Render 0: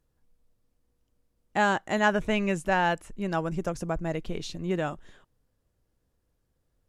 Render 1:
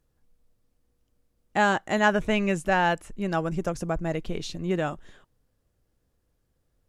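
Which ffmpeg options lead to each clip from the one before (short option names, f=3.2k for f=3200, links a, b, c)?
-af "bandreject=f=960:w=24,volume=2dB"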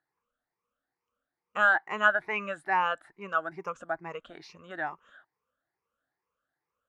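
-af "afftfilt=real='re*pow(10,16/40*sin(2*PI*(0.8*log(max(b,1)*sr/1024/100)/log(2)-(2.3)*(pts-256)/sr)))':imag='im*pow(10,16/40*sin(2*PI*(0.8*log(max(b,1)*sr/1024/100)/log(2)-(2.3)*(pts-256)/sr)))':win_size=1024:overlap=0.75,bandpass=f=1.3k:t=q:w=2.1:csg=0,volume=1dB"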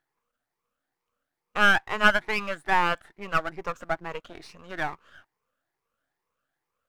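-af "aeval=exprs='if(lt(val(0),0),0.251*val(0),val(0))':c=same,volume=6.5dB"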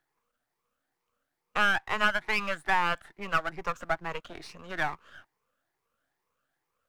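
-filter_complex "[0:a]acrossover=split=230|590[a][b][c];[a]acompressor=threshold=-34dB:ratio=4[d];[b]acompressor=threshold=-47dB:ratio=4[e];[c]acompressor=threshold=-24dB:ratio=4[f];[d][e][f]amix=inputs=3:normalize=0,volume=1.5dB"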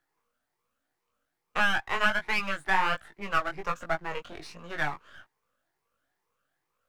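-af "flanger=delay=17.5:depth=4.1:speed=1.3,volume=3.5dB"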